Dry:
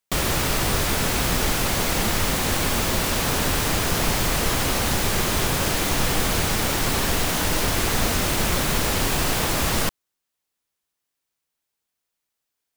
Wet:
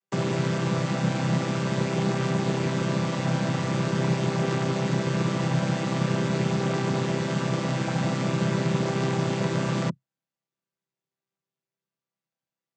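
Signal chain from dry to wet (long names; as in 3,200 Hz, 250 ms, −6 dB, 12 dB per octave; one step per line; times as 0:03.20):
channel vocoder with a chord as carrier major triad, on C3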